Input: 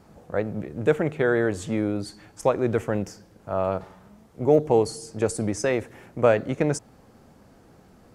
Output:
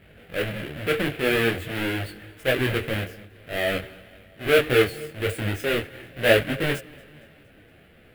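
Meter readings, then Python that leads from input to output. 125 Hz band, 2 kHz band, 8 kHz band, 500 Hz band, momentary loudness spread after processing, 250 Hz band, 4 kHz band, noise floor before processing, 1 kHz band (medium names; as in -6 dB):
0.0 dB, +8.5 dB, -3.5 dB, -1.5 dB, 13 LU, -2.5 dB, +13.5 dB, -54 dBFS, -3.0 dB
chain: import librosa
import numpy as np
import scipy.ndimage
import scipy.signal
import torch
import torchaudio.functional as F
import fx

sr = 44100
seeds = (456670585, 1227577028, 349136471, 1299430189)

y = fx.halfwave_hold(x, sr)
y = fx.curve_eq(y, sr, hz=(110.0, 200.0, 300.0, 650.0, 970.0, 1600.0, 3000.0, 6000.0, 11000.0), db=(0, -5, 0, 2, -12, 7, 7, -15, -1))
y = fx.transient(y, sr, attack_db=-6, sustain_db=1)
y = fx.echo_feedback(y, sr, ms=232, feedback_pct=59, wet_db=-23.5)
y = fx.detune_double(y, sr, cents=16)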